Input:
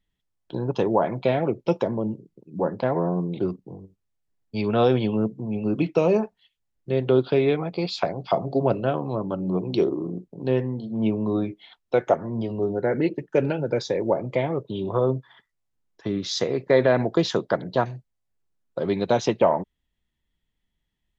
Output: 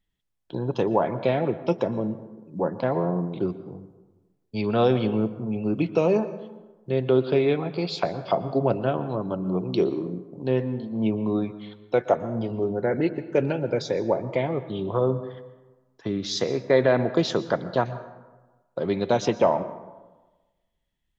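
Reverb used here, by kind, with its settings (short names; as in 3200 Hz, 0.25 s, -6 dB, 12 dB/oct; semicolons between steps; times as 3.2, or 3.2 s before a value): plate-style reverb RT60 1.2 s, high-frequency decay 0.5×, pre-delay 0.105 s, DRR 13.5 dB; gain -1 dB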